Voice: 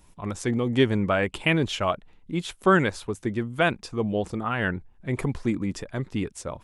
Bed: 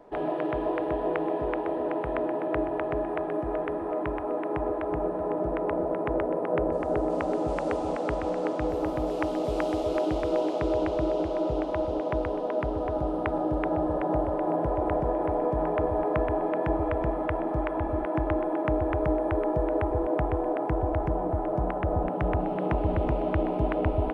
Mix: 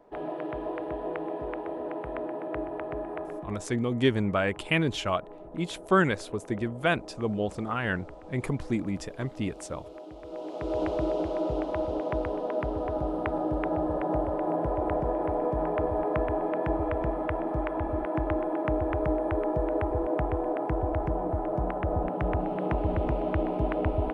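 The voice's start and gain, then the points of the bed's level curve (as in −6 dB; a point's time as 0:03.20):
3.25 s, −3.0 dB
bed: 0:03.23 −5.5 dB
0:03.80 −17.5 dB
0:10.16 −17.5 dB
0:10.83 −1.5 dB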